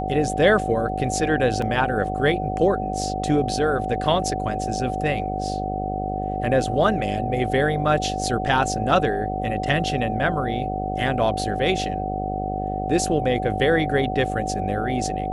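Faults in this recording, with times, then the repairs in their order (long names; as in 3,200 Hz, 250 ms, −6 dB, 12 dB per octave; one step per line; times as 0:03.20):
mains buzz 50 Hz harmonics 16 −29 dBFS
whistle 750 Hz −28 dBFS
0:01.62: drop-out 2.8 ms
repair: hum removal 50 Hz, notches 16
notch filter 750 Hz, Q 30
repair the gap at 0:01.62, 2.8 ms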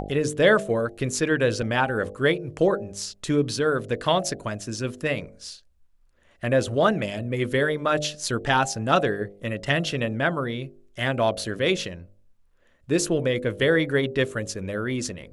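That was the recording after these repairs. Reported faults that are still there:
none of them is left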